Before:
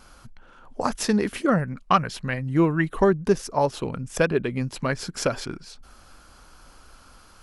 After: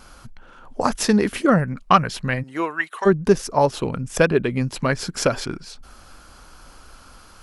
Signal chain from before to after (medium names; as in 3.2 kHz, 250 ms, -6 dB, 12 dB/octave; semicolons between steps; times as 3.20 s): 2.42–3.05 s: high-pass 450 Hz -> 1.3 kHz 12 dB/octave; trim +4.5 dB